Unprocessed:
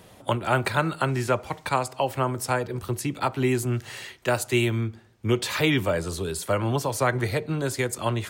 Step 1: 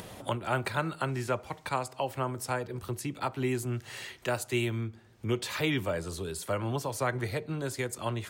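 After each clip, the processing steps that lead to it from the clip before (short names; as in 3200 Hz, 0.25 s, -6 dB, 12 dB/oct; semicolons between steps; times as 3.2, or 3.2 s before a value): upward compressor, threshold -27 dBFS; gain -7 dB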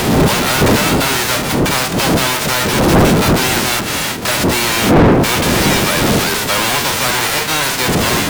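spectral whitening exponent 0.1; wind noise 190 Hz -28 dBFS; overdrive pedal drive 38 dB, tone 2200 Hz, clips at -5.5 dBFS; gain +4.5 dB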